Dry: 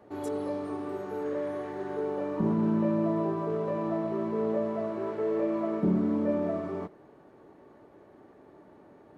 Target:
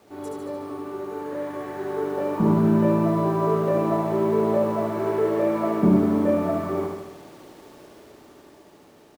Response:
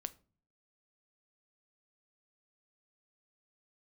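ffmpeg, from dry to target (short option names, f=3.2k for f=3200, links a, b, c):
-filter_complex "[0:a]bandreject=f=50.3:t=h:w=4,bandreject=f=100.6:t=h:w=4,bandreject=f=150.9:t=h:w=4,bandreject=f=201.2:t=h:w=4,bandreject=f=251.5:t=h:w=4,bandreject=f=301.8:t=h:w=4,bandreject=f=352.1:t=h:w=4,bandreject=f=402.4:t=h:w=4,bandreject=f=452.7:t=h:w=4,bandreject=f=503:t=h:w=4,bandreject=f=553.3:t=h:w=4,bandreject=f=603.6:t=h:w=4,bandreject=f=653.9:t=h:w=4,bandreject=f=704.2:t=h:w=4,bandreject=f=754.5:t=h:w=4,bandreject=f=804.8:t=h:w=4,bandreject=f=855.1:t=h:w=4,bandreject=f=905.4:t=h:w=4,bandreject=f=955.7:t=h:w=4,bandreject=f=1.006k:t=h:w=4,acrusher=bits=9:mix=0:aa=0.000001,dynaudnorm=f=410:g=9:m=8dB,asplit=2[a][b];[b]aecho=0:1:74|148|222|296|370|444|518|592:0.631|0.372|0.22|0.13|0.0765|0.0451|0.0266|0.0157[c];[a][c]amix=inputs=2:normalize=0"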